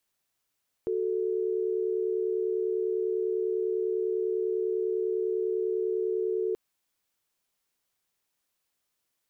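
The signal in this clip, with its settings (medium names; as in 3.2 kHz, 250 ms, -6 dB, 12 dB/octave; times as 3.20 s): chord F#4/A4 sine, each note -28.5 dBFS 5.68 s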